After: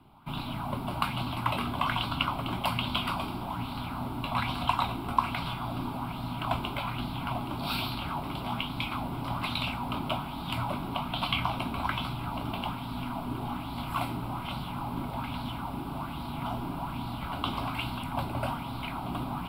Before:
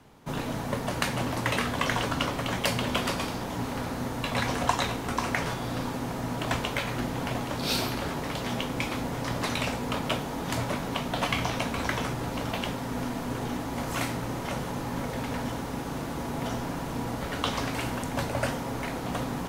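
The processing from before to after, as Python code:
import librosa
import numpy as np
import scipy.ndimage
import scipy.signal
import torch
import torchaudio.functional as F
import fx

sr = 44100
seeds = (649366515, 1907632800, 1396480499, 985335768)

y = fx.peak_eq(x, sr, hz=7100.0, db=-5.0, octaves=2.1)
y = fx.fixed_phaser(y, sr, hz=1800.0, stages=6)
y = fx.bell_lfo(y, sr, hz=1.2, low_hz=350.0, high_hz=4200.0, db=9)
y = F.gain(torch.from_numpy(y), -1.0).numpy()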